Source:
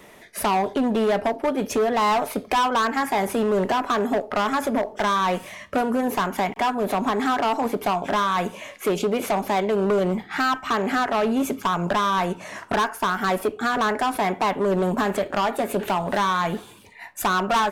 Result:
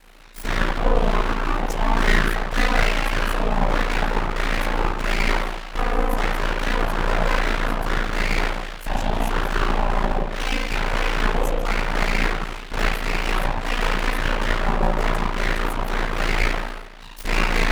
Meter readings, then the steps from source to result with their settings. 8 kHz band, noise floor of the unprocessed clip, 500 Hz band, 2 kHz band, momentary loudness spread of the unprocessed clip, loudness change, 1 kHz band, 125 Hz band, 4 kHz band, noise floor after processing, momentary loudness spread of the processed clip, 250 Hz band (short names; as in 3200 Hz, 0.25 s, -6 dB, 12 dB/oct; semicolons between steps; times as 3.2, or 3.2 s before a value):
-1.0 dB, -46 dBFS, -4.0 dB, +4.0 dB, 5 LU, -0.5 dB, -3.5 dB, +5.5 dB, +2.5 dB, -35 dBFS, 4 LU, -4.0 dB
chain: spring tank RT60 1.1 s, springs 32/56 ms, chirp 40 ms, DRR -6 dB; full-wave rectifier; ring modulator 28 Hz; gain -1.5 dB